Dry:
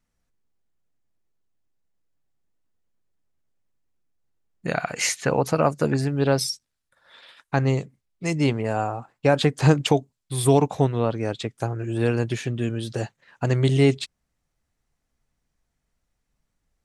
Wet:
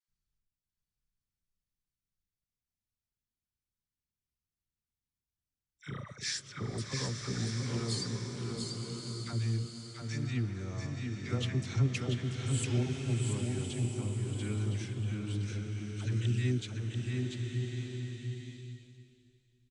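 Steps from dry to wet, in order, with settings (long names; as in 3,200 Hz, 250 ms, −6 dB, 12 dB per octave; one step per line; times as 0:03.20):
gliding playback speed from 78% → 93%
guitar amp tone stack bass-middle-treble 6-0-2
all-pass dispersion lows, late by 85 ms, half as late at 880 Hz
on a send: single-tap delay 689 ms −4.5 dB
on the sum: slow-attack reverb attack 1,200 ms, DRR 3 dB
level +4 dB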